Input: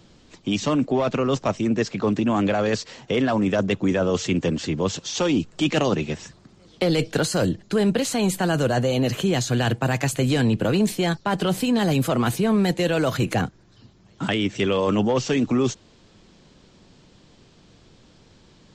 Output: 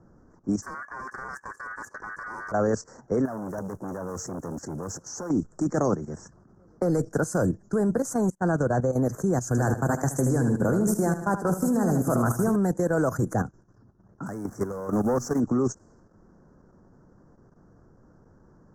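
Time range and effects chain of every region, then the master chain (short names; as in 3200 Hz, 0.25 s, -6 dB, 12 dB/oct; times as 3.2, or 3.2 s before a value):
0.62–2.52 minimum comb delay 1.4 ms + high shelf 6000 Hz -5 dB + ring modulator 1700 Hz
3.25–5.31 block floating point 5-bit + core saturation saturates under 910 Hz
8.3–8.93 gate -26 dBFS, range -42 dB + air absorption 72 m + upward compressor, threshold -41 dBFS
9.47–12.56 high shelf 5300 Hz +4 dB + feedback echo 76 ms, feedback 50%, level -5.5 dB
14.26–15.4 level-crossing sampler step -38 dBFS + sample leveller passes 2 + resonator 240 Hz, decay 0.42 s, harmonics odd, mix 50%
whole clip: low-pass opened by the level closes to 2700 Hz, open at -22 dBFS; level quantiser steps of 11 dB; elliptic band-stop 1500–6000 Hz, stop band 60 dB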